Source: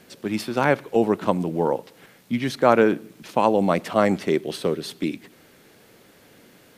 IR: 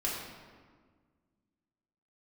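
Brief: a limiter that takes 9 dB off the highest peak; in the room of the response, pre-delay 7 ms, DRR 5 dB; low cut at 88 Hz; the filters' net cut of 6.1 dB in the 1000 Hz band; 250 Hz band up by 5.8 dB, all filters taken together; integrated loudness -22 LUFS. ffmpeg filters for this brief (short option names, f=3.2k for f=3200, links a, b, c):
-filter_complex "[0:a]highpass=88,equalizer=f=250:t=o:g=8,equalizer=f=1k:t=o:g=-9,alimiter=limit=-12.5dB:level=0:latency=1,asplit=2[a][b];[1:a]atrim=start_sample=2205,adelay=7[c];[b][c]afir=irnorm=-1:irlink=0,volume=-10.5dB[d];[a][d]amix=inputs=2:normalize=0,volume=1dB"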